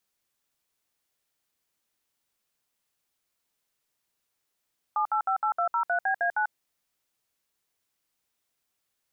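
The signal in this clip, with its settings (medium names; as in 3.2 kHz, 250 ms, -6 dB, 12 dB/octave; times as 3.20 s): DTMF "7858203BA9", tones 93 ms, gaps 63 ms, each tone -25.5 dBFS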